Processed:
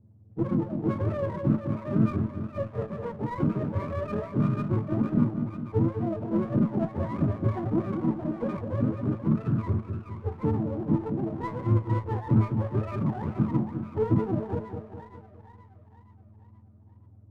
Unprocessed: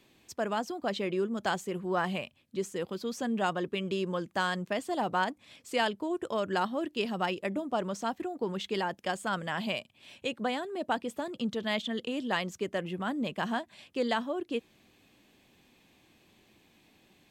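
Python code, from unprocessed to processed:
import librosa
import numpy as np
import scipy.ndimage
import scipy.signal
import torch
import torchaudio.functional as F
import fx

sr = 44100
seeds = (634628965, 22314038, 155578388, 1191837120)

p1 = fx.octave_mirror(x, sr, pivot_hz=470.0)
p2 = fx.env_lowpass(p1, sr, base_hz=370.0, full_db=-26.5)
p3 = fx.peak_eq(p2, sr, hz=180.0, db=12.5, octaves=1.7)
p4 = fx.rider(p3, sr, range_db=5, speed_s=0.5)
p5 = p3 + F.gain(torch.from_numpy(p4), -3.0).numpy()
p6 = fx.comb_fb(p5, sr, f0_hz=110.0, decay_s=0.2, harmonics='all', damping=0.0, mix_pct=80)
p7 = p6 + fx.echo_split(p6, sr, split_hz=780.0, low_ms=205, high_ms=474, feedback_pct=52, wet_db=-7, dry=0)
y = fx.running_max(p7, sr, window=9)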